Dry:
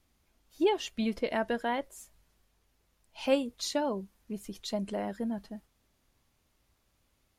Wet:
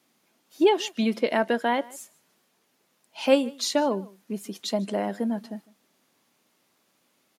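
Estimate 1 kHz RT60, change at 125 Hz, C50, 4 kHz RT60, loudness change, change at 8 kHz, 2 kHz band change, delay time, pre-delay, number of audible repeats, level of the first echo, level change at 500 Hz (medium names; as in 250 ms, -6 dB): no reverb, no reading, no reverb, no reverb, +7.0 dB, +7.0 dB, +7.0 dB, 153 ms, no reverb, 1, -22.5 dB, +7.0 dB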